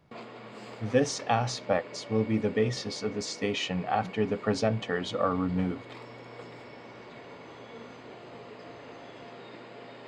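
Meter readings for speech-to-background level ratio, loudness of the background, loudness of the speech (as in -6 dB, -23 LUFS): 16.0 dB, -45.5 LUFS, -29.5 LUFS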